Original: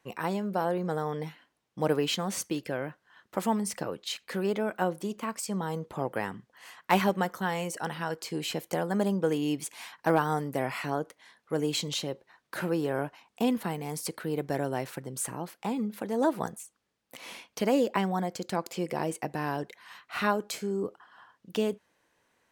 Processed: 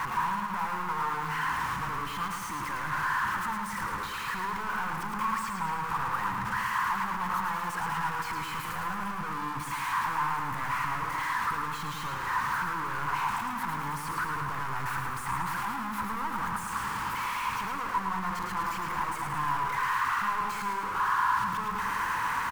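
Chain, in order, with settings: one-bit comparator; FFT filter 110 Hz 0 dB, 640 Hz -15 dB, 990 Hz +13 dB, 3.7 kHz -10 dB; feedback delay 109 ms, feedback 58%, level -5 dB; trim -3 dB

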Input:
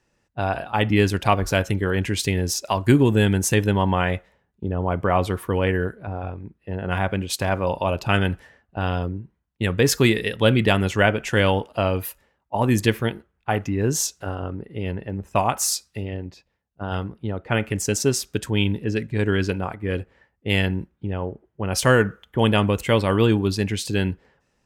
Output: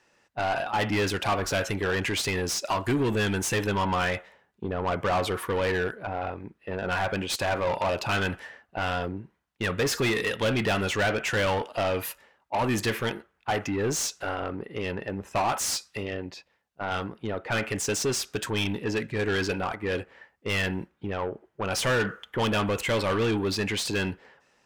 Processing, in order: saturation -11.5 dBFS, distortion -17 dB; overdrive pedal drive 21 dB, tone 4.8 kHz, clips at -11.5 dBFS; trim -7 dB

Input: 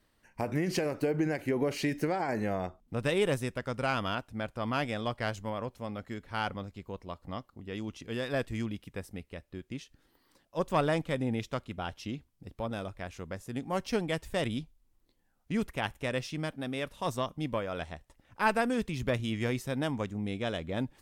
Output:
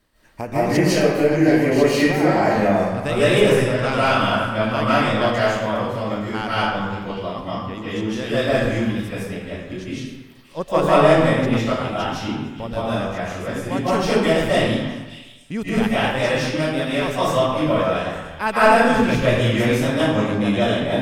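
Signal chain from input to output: repeats whose band climbs or falls 288 ms, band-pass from 1.3 kHz, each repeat 1.4 oct, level -10 dB; algorithmic reverb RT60 1.1 s, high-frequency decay 0.75×, pre-delay 115 ms, DRR -10 dB; trim +4 dB

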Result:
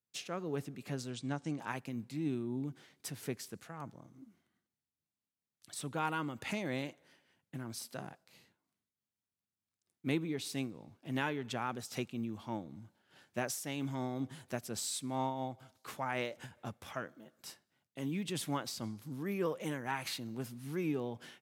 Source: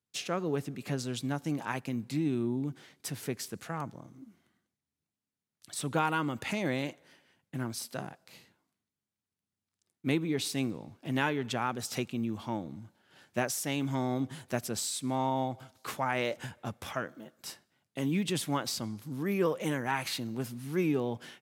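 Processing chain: 1.10–1.60 s: steep low-pass 9.3 kHz 96 dB/octave; random flutter of the level, depth 65%; trim -2 dB

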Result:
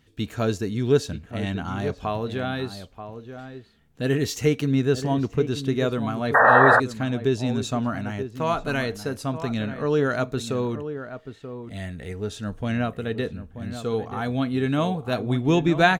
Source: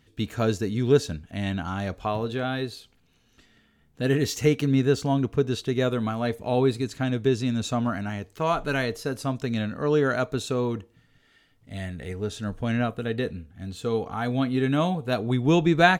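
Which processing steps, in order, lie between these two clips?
echo from a far wall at 160 m, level -10 dB; painted sound noise, 6.34–6.80 s, 450–1900 Hz -15 dBFS

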